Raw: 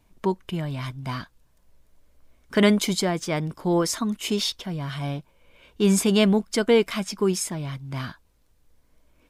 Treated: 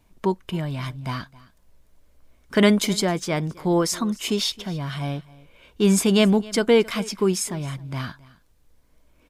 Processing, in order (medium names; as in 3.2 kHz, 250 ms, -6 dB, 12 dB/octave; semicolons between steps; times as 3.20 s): delay 267 ms -21.5 dB; trim +1.5 dB